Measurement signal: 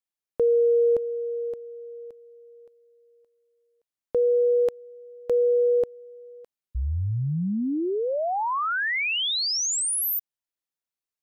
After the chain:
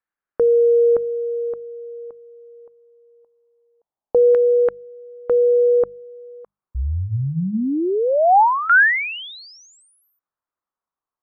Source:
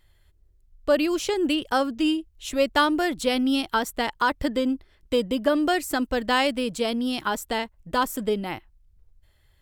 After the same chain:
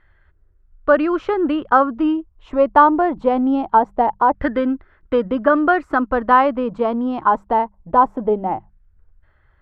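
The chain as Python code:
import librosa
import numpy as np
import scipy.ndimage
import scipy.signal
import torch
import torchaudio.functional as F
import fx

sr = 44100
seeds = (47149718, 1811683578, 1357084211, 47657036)

y = fx.hum_notches(x, sr, base_hz=50, count=4)
y = fx.filter_lfo_lowpass(y, sr, shape='saw_down', hz=0.23, low_hz=790.0, high_hz=1600.0, q=3.3)
y = y * 10.0 ** (4.5 / 20.0)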